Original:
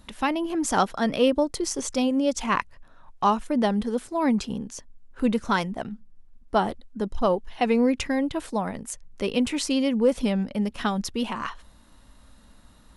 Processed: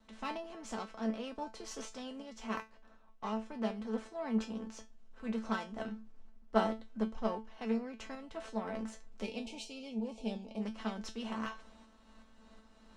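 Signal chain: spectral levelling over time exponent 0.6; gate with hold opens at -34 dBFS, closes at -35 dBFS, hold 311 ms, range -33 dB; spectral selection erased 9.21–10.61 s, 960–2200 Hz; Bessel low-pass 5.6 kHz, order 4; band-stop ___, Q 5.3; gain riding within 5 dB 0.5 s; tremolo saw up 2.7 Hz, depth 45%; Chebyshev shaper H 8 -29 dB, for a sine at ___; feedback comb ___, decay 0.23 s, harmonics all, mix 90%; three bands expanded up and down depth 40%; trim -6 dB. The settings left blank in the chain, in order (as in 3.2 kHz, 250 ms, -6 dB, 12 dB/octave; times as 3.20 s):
160 Hz, -5.5 dBFS, 220 Hz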